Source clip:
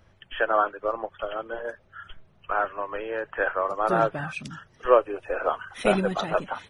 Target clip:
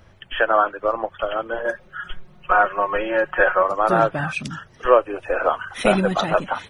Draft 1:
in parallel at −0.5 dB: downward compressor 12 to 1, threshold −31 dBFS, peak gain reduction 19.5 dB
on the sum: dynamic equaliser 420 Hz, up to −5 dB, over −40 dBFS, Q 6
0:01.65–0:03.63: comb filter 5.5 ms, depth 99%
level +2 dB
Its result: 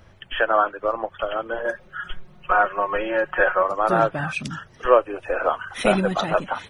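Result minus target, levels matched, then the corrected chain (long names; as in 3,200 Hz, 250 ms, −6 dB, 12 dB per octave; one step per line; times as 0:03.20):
downward compressor: peak gain reduction +7 dB
in parallel at −0.5 dB: downward compressor 12 to 1, threshold −23.5 dBFS, peak gain reduction 12.5 dB
on the sum: dynamic equaliser 420 Hz, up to −5 dB, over −40 dBFS, Q 6
0:01.65–0:03.63: comb filter 5.5 ms, depth 99%
level +2 dB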